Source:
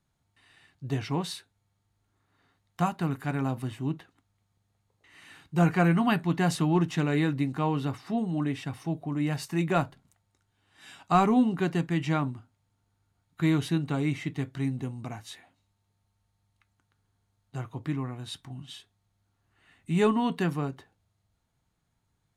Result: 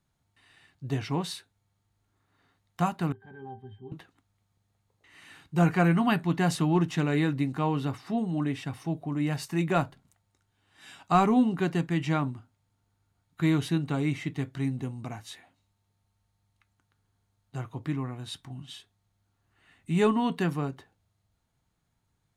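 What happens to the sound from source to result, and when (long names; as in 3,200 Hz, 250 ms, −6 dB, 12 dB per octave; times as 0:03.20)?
0:03.12–0:03.92: resonances in every octave G, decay 0.15 s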